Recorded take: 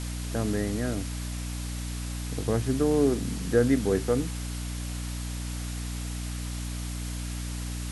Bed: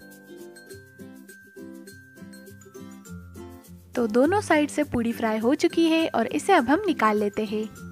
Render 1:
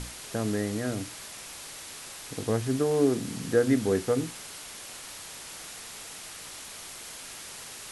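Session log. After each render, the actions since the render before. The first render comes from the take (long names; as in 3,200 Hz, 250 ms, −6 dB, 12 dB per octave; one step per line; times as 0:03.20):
mains-hum notches 60/120/180/240/300/360 Hz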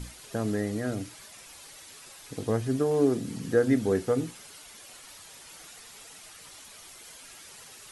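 broadband denoise 9 dB, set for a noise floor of −43 dBFS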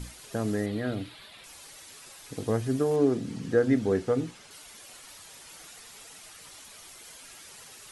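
0:00.66–0:01.44: high shelf with overshoot 4,800 Hz −8 dB, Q 3
0:02.96–0:04.51: high-frequency loss of the air 58 metres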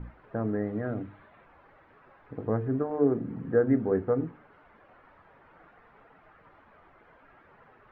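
low-pass filter 1,600 Hz 24 dB per octave
mains-hum notches 50/100/150/200/250/300/350/400/450 Hz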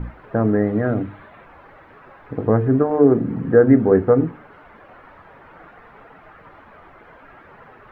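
level +12 dB
brickwall limiter −3 dBFS, peak gain reduction 2.5 dB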